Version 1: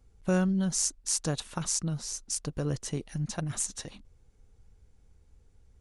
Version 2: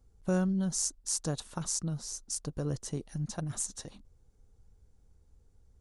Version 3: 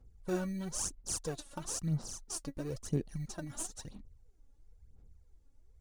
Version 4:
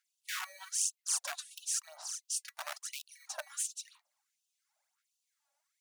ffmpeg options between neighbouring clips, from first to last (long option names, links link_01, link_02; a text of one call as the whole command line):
ffmpeg -i in.wav -af "equalizer=frequency=2400:width=1.2:gain=-7.5,volume=-2.5dB" out.wav
ffmpeg -i in.wav -filter_complex "[0:a]asplit=2[link_01][link_02];[link_02]acrusher=samples=21:mix=1:aa=0.000001,volume=-10dB[link_03];[link_01][link_03]amix=inputs=2:normalize=0,aphaser=in_gain=1:out_gain=1:delay=3.6:decay=0.67:speed=1:type=sinusoidal,volume=-7.5dB" out.wav
ffmpeg -i in.wav -filter_complex "[0:a]acrossover=split=230|790|3100[link_01][link_02][link_03][link_04];[link_02]aeval=exprs='(mod(70.8*val(0)+1,2)-1)/70.8':channel_layout=same[link_05];[link_01][link_05][link_03][link_04]amix=inputs=4:normalize=0,afftfilt=real='re*gte(b*sr/1024,540*pow(2600/540,0.5+0.5*sin(2*PI*1.4*pts/sr)))':imag='im*gte(b*sr/1024,540*pow(2600/540,0.5+0.5*sin(2*PI*1.4*pts/sr)))':win_size=1024:overlap=0.75,volume=5dB" out.wav